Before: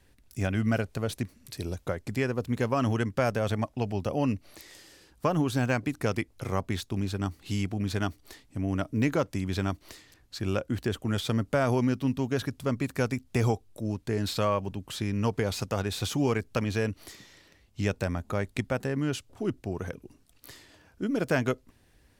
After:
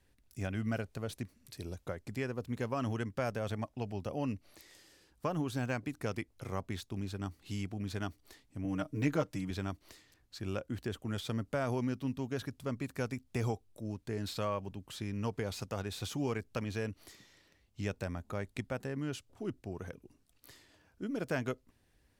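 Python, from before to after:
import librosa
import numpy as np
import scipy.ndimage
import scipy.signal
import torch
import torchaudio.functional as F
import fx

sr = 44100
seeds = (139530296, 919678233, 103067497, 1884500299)

y = fx.comb(x, sr, ms=6.5, depth=0.84, at=(8.64, 9.51))
y = F.gain(torch.from_numpy(y), -8.5).numpy()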